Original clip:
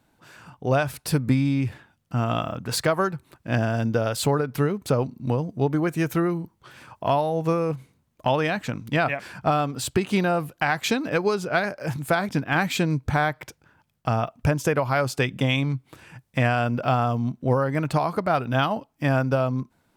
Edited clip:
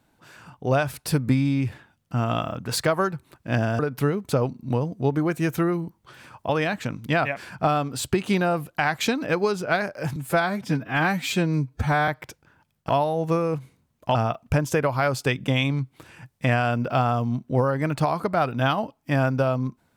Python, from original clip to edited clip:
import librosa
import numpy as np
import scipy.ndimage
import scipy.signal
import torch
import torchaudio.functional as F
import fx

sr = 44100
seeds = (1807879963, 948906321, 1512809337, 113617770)

y = fx.edit(x, sr, fx.cut(start_s=3.79, length_s=0.57),
    fx.move(start_s=7.06, length_s=1.26, to_s=14.08),
    fx.stretch_span(start_s=11.99, length_s=1.28, factor=1.5), tone=tone)